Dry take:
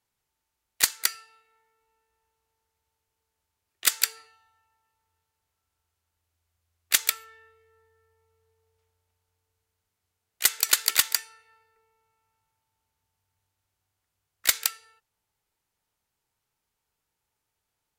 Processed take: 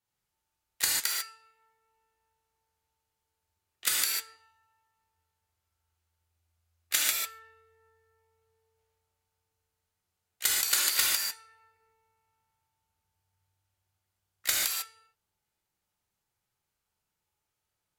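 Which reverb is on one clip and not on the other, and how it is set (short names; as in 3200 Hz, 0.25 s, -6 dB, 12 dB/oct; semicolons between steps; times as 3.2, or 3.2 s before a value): non-linear reverb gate 0.17 s flat, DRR -4 dB; gain -8 dB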